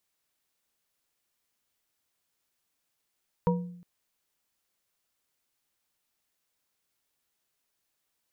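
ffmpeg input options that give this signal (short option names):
-f lavfi -i "aevalsrc='0.0891*pow(10,-3*t/0.74)*sin(2*PI*176*t)+0.0708*pow(10,-3*t/0.364)*sin(2*PI*485.2*t)+0.0562*pow(10,-3*t/0.227)*sin(2*PI*951.1*t)':d=0.36:s=44100"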